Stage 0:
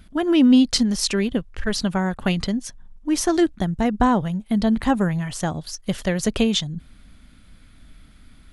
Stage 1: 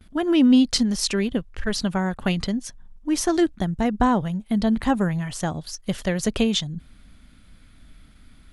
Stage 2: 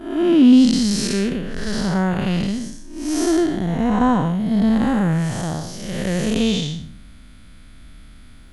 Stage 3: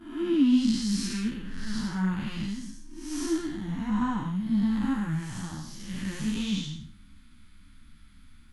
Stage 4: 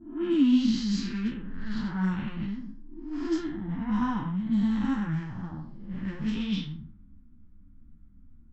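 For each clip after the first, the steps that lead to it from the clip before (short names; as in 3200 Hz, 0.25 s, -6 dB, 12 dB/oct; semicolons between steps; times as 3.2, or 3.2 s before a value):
gate with hold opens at -41 dBFS; gain -1.5 dB
time blur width 0.259 s; gain +8 dB
band shelf 540 Hz -15 dB 1.1 oct; ensemble effect; gain -7 dB
nonlinear frequency compression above 3700 Hz 1.5:1; low-pass opened by the level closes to 390 Hz, open at -21 dBFS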